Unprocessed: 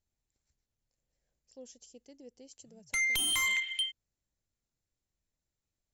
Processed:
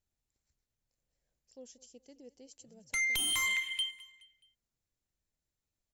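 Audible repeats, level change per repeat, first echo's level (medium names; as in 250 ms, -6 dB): 3, -7.5 dB, -20.0 dB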